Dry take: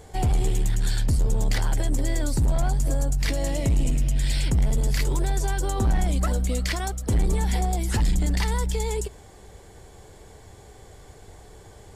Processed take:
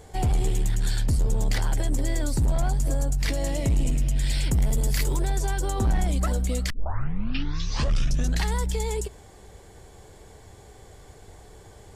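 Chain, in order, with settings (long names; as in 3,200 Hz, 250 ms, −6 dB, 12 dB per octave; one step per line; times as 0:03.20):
0:04.51–0:05.16: high-shelf EQ 11,000 Hz +12 dB
0:06.70: tape start 1.83 s
level −1 dB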